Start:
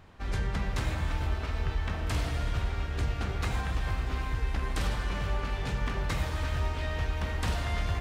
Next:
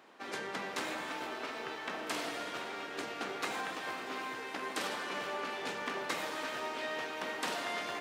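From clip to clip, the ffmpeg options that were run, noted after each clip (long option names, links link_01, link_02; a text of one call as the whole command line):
ffmpeg -i in.wav -af "highpass=frequency=270:width=0.5412,highpass=frequency=270:width=1.3066" out.wav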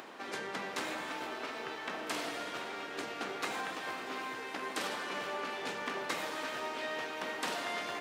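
ffmpeg -i in.wav -af "acompressor=mode=upward:threshold=-40dB:ratio=2.5" out.wav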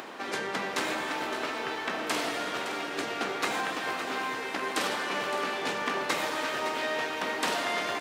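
ffmpeg -i in.wav -af "aecho=1:1:564:0.282,volume=7dB" out.wav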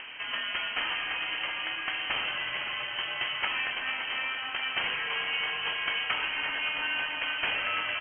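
ffmpeg -i in.wav -af "lowpass=frequency=2900:width_type=q:width=0.5098,lowpass=frequency=2900:width_type=q:width=0.6013,lowpass=frequency=2900:width_type=q:width=0.9,lowpass=frequency=2900:width_type=q:width=2.563,afreqshift=-3400" out.wav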